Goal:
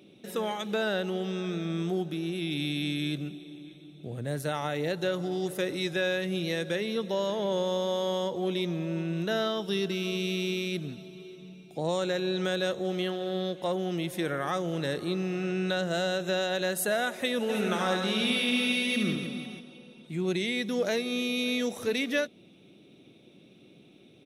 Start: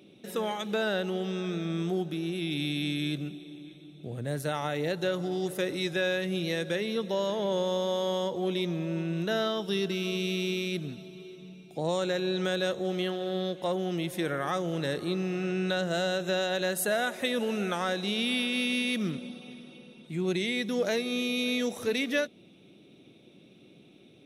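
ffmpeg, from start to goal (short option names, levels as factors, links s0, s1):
-filter_complex "[0:a]asplit=3[s0][s1][s2];[s0]afade=t=out:st=17.48:d=0.02[s3];[s1]aecho=1:1:70|168|305.2|497.3|766.2:0.631|0.398|0.251|0.158|0.1,afade=t=in:st=17.48:d=0.02,afade=t=out:st=19.59:d=0.02[s4];[s2]afade=t=in:st=19.59:d=0.02[s5];[s3][s4][s5]amix=inputs=3:normalize=0"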